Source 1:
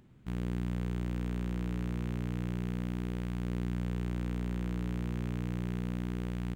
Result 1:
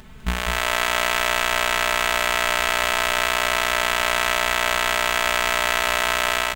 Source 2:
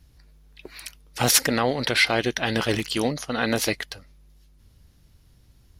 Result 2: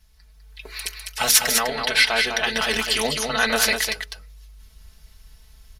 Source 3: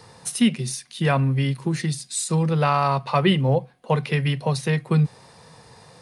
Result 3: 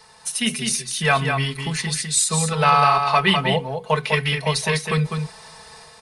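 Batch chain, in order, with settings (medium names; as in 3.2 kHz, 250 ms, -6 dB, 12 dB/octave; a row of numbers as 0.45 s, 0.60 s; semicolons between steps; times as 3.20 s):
peaking EQ 250 Hz -14 dB 2.1 oct; hum notches 60/120/180/240/300/360/420/480 Hz; comb 4.6 ms, depth 84%; level rider gain up to 7 dB; on a send: delay 202 ms -5.5 dB; on the sum: normalise loudness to -20 LUFS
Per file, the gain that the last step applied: +21.5 dB, 0.0 dB, -0.5 dB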